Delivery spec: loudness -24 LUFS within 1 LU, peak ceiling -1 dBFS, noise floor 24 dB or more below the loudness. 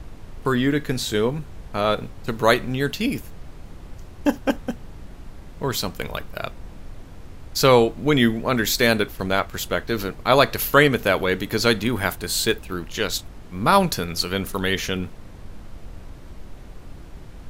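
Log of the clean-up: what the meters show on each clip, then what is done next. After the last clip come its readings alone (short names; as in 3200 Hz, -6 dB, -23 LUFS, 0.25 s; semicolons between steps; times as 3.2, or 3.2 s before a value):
noise floor -41 dBFS; noise floor target -46 dBFS; loudness -22.0 LUFS; peak -1.5 dBFS; loudness target -24.0 LUFS
-> noise print and reduce 6 dB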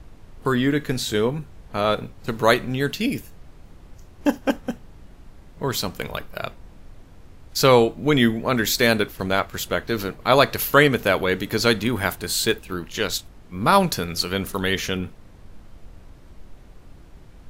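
noise floor -46 dBFS; loudness -22.0 LUFS; peak -1.5 dBFS; loudness target -24.0 LUFS
-> gain -2 dB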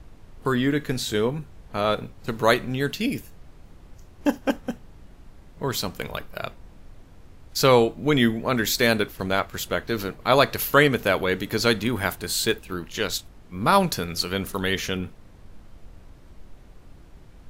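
loudness -24.0 LUFS; peak -3.5 dBFS; noise floor -48 dBFS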